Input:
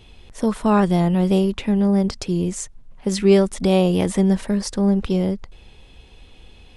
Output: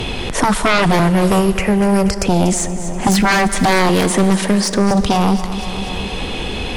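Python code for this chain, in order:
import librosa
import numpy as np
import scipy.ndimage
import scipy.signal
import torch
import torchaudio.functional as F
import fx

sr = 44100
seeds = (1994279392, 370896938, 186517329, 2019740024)

y = fx.fixed_phaser(x, sr, hz=1000.0, stages=6, at=(0.99, 2.25))
y = fx.highpass(y, sr, hz=370.0, slope=6, at=(3.89, 4.91))
y = fx.fold_sine(y, sr, drive_db=16, ceiling_db=-3.5)
y = fx.echo_feedback(y, sr, ms=240, feedback_pct=52, wet_db=-15.5)
y = fx.rev_plate(y, sr, seeds[0], rt60_s=1.5, hf_ratio=0.95, predelay_ms=0, drr_db=14.5)
y = fx.band_squash(y, sr, depth_pct=70)
y = F.gain(torch.from_numpy(y), -6.5).numpy()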